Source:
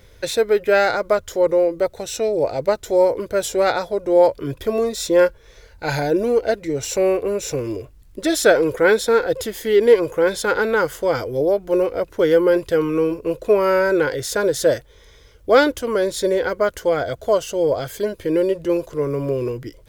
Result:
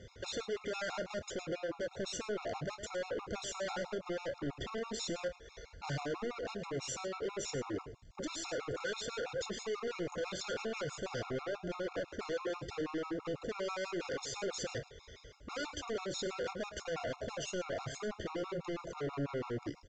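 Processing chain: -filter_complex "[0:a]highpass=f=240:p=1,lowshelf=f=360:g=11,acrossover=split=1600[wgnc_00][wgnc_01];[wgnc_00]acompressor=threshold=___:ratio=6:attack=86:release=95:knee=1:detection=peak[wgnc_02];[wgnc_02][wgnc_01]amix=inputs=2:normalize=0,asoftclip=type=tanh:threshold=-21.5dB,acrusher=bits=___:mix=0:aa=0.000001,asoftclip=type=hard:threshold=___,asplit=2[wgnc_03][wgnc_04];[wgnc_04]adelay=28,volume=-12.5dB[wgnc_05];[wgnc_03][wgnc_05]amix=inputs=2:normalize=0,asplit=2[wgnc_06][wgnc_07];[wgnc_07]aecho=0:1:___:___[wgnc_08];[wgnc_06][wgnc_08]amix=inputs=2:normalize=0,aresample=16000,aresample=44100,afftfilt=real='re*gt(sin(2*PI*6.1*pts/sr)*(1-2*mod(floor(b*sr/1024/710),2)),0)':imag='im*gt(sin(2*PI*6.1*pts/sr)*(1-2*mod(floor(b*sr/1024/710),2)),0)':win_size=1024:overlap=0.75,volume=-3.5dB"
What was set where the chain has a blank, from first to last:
-25dB, 9, -31.5dB, 107, 0.237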